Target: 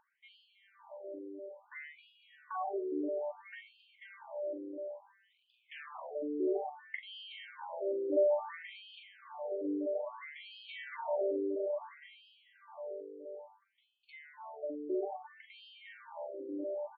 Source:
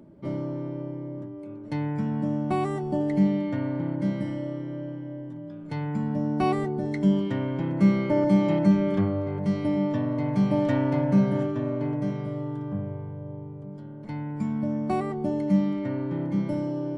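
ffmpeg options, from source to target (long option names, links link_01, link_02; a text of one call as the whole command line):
ffmpeg -i in.wav -filter_complex "[0:a]equalizer=frequency=200:width_type=o:width=0.33:gain=-7,equalizer=frequency=315:width_type=o:width=0.33:gain=-12,equalizer=frequency=1250:width_type=o:width=0.33:gain=-7,equalizer=frequency=4000:width_type=o:width=0.33:gain=-7,asplit=3[link_01][link_02][link_03];[link_01]afade=type=out:start_time=5.3:duration=0.02[link_04];[link_02]aeval=exprs='0.0168*(abs(mod(val(0)/0.0168+3,4)-2)-1)':channel_layout=same,afade=type=in:start_time=5.3:duration=0.02,afade=type=out:start_time=6.1:duration=0.02[link_05];[link_03]afade=type=in:start_time=6.1:duration=0.02[link_06];[link_04][link_05][link_06]amix=inputs=3:normalize=0,asplit=2[link_07][link_08];[link_08]adelay=41,volume=-7dB[link_09];[link_07][link_09]amix=inputs=2:normalize=0,afftfilt=real='re*between(b*sr/1024,380*pow(3500/380,0.5+0.5*sin(2*PI*0.59*pts/sr))/1.41,380*pow(3500/380,0.5+0.5*sin(2*PI*0.59*pts/sr))*1.41)':imag='im*between(b*sr/1024,380*pow(3500/380,0.5+0.5*sin(2*PI*0.59*pts/sr))/1.41,380*pow(3500/380,0.5+0.5*sin(2*PI*0.59*pts/sr))*1.41)':win_size=1024:overlap=0.75" out.wav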